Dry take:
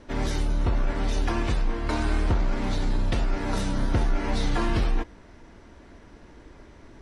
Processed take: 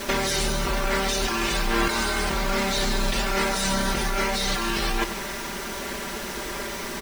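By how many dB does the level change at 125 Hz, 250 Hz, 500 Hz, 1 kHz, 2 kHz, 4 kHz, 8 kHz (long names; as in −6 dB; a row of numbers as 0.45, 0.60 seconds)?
−5.0, +1.0, +5.5, +7.0, +10.0, +12.0, +15.0 decibels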